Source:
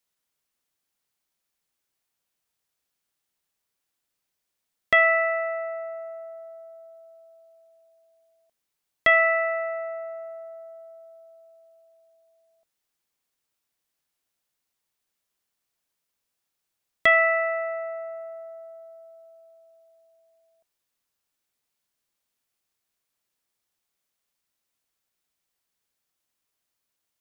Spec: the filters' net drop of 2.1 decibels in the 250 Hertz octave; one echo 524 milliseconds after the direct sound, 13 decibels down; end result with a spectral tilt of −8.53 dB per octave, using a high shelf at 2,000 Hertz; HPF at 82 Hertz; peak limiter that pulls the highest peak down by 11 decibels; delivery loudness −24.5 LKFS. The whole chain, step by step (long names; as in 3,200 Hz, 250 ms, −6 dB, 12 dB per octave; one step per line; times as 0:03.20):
high-pass filter 82 Hz
parametric band 250 Hz −3 dB
high-shelf EQ 2,000 Hz +8.5 dB
brickwall limiter −14 dBFS
single-tap delay 524 ms −13 dB
level +1 dB